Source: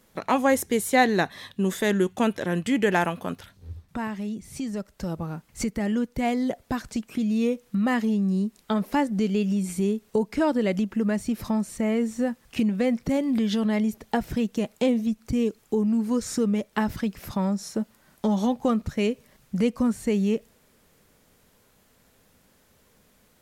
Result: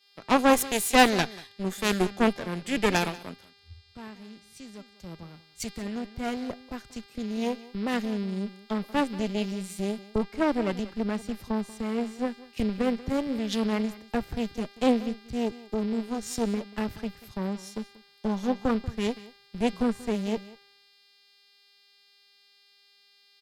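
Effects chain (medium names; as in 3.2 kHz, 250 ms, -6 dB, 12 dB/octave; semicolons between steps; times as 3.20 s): mains buzz 400 Hz, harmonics 13, -44 dBFS -1 dB/octave; Chebyshev shaper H 4 -10 dB, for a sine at -8 dBFS; delay 188 ms -14.5 dB; three bands expanded up and down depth 100%; trim -6 dB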